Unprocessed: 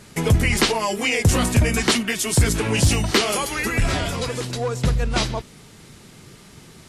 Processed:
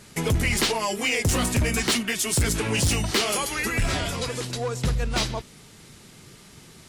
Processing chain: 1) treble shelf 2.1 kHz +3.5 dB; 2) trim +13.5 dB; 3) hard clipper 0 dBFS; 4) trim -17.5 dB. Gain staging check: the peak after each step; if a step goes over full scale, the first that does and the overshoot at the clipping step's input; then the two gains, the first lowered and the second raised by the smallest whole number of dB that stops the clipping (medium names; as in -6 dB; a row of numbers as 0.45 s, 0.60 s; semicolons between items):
-6.0 dBFS, +7.5 dBFS, 0.0 dBFS, -17.5 dBFS; step 2, 7.5 dB; step 2 +5.5 dB, step 4 -9.5 dB